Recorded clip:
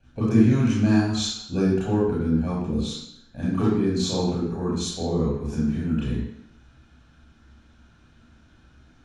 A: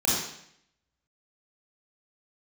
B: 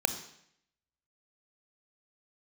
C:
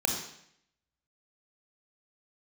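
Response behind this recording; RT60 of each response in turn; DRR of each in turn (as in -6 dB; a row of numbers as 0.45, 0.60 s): A; 0.70, 0.70, 0.70 s; -6.5, 9.0, 1.5 dB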